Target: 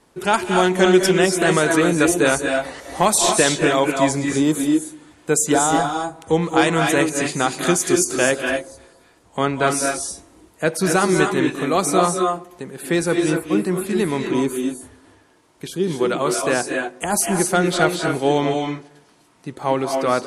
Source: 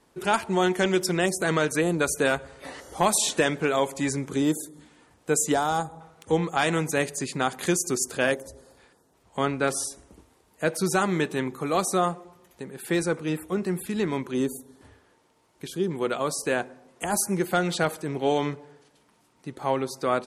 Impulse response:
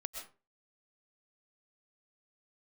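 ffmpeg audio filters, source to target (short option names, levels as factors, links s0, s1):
-filter_complex "[1:a]atrim=start_sample=2205,afade=t=out:st=0.19:d=0.01,atrim=end_sample=8820,asetrate=22932,aresample=44100[s0];[0:a][s0]afir=irnorm=-1:irlink=0,volume=1.78"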